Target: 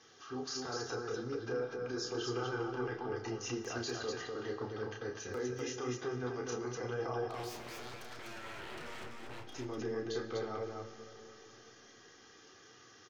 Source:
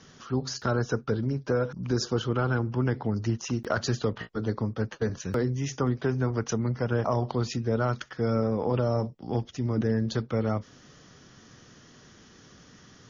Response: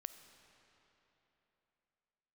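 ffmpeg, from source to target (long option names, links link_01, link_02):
-filter_complex "[0:a]highpass=frequency=140:poles=1,bass=frequency=250:gain=-8,treble=frequency=4000:gain=0,aecho=1:1:2.5:0.6,alimiter=level_in=0.5dB:limit=-24dB:level=0:latency=1:release=14,volume=-0.5dB,asettb=1/sr,asplit=3[link_01][link_02][link_03];[link_01]atrim=end=7.264[link_04];[link_02]atrim=start=7.26:end=9.5,asetpts=PTS-STARTPTS,afade=type=in:duration=0.004:curve=qsin,afade=type=out:start_time=2.236:duration=0.004:curve=qsin,aeval=exprs='0.0141*(abs(mod(val(0)/0.0141+3,4)-2)-1)':channel_layout=same[link_05];[link_03]atrim=start=9.496[link_06];[link_04][link_05]acrossfade=duration=0.004:curve1=hsin:curve2=qsin[link_07];[link_07][link_06]acrossfade=duration=0.004:curve1=qsin:curve2=hsin,flanger=delay=8:depth=5.7:regen=48:speed=0.86:shape=triangular,aecho=1:1:32.07|247.8:0.631|0.708[link_08];[1:a]atrim=start_sample=2205[link_09];[link_08][link_09]afir=irnorm=-1:irlink=0,volume=1dB"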